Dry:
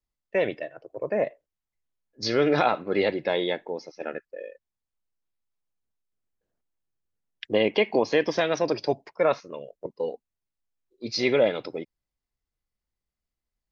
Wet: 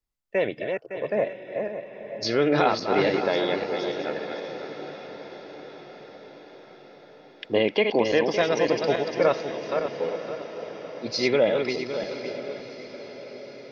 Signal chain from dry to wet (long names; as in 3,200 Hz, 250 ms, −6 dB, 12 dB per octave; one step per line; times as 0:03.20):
feedback delay that plays each chunk backwards 280 ms, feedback 52%, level −5 dB
feedback delay with all-pass diffusion 910 ms, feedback 58%, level −13 dB